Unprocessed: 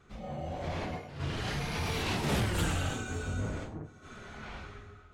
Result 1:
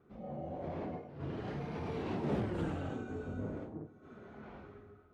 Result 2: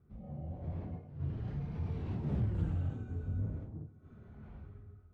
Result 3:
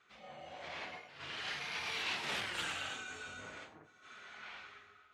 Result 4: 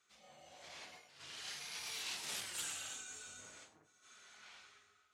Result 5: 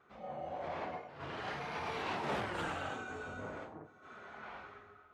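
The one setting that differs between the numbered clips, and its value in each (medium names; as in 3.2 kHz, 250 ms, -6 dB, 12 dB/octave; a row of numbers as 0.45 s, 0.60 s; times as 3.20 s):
band-pass filter, frequency: 330 Hz, 100 Hz, 2.6 kHz, 7.7 kHz, 930 Hz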